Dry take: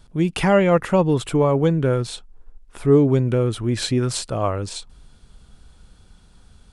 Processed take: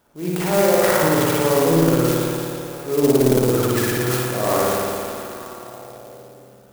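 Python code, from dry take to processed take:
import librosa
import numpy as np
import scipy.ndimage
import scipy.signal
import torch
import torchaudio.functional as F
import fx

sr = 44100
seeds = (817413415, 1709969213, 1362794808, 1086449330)

p1 = scipy.signal.sosfilt(scipy.signal.butter(2, 530.0, 'highpass', fs=sr, output='sos'), x)
p2 = fx.tilt_eq(p1, sr, slope=-3.5)
p3 = fx.over_compress(p2, sr, threshold_db=-24.0, ratio=-1.0)
p4 = p2 + (p3 * librosa.db_to_amplitude(-2.0))
p5 = fx.transient(p4, sr, attack_db=-7, sustain_db=12)
p6 = p5 + fx.echo_stepped(p5, sr, ms=305, hz=3000.0, octaves=-0.7, feedback_pct=70, wet_db=-9.5, dry=0)
p7 = fx.rev_spring(p6, sr, rt60_s=2.4, pass_ms=(55,), chirp_ms=65, drr_db=-6.5)
p8 = fx.resample_bad(p7, sr, factor=8, down='filtered', up='hold', at=(3.19, 3.63))
p9 = fx.clock_jitter(p8, sr, seeds[0], jitter_ms=0.068)
y = p9 * librosa.db_to_amplitude(-7.0)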